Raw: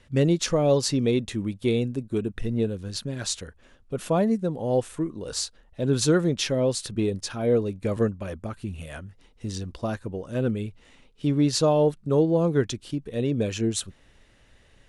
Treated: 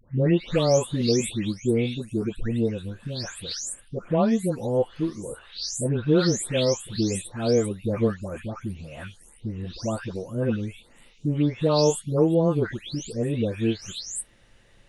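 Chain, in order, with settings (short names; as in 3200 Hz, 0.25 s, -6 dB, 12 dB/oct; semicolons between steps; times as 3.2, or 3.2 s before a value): spectral delay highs late, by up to 0.405 s; gain +1.5 dB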